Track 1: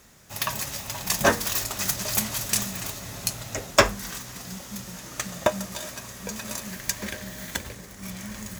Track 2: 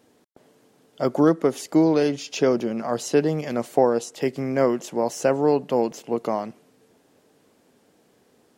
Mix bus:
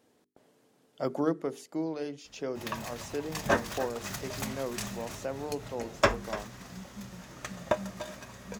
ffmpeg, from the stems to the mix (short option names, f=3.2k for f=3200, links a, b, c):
-filter_complex "[0:a]lowpass=f=2.4k:p=1,adelay=2250,volume=-5dB,asplit=2[a][b];[b]volume=-15dB[c];[1:a]bandreject=f=50:t=h:w=6,bandreject=f=100:t=h:w=6,bandreject=f=150:t=h:w=6,bandreject=f=200:t=h:w=6,bandreject=f=250:t=h:w=6,bandreject=f=300:t=h:w=6,bandreject=f=350:t=h:w=6,bandreject=f=400:t=h:w=6,bandreject=f=450:t=h:w=6,volume=-7dB,afade=t=out:st=0.89:d=0.79:silence=0.398107,asplit=2[d][e];[e]apad=whole_len=478421[f];[a][f]sidechaincompress=threshold=-37dB:ratio=8:attack=33:release=140[g];[c]aecho=0:1:293:1[h];[g][d][h]amix=inputs=3:normalize=0"